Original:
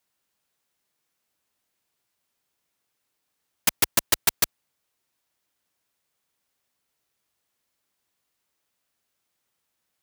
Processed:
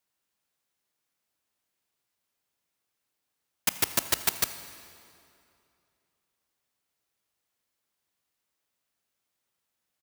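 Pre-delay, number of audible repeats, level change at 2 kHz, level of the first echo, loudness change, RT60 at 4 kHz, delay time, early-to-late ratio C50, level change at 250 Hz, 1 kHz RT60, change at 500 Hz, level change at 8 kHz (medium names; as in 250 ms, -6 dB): 22 ms, 1, -4.0 dB, -21.0 dB, -4.0 dB, 2.1 s, 82 ms, 11.5 dB, -4.5 dB, 2.6 s, -4.0 dB, -4.0 dB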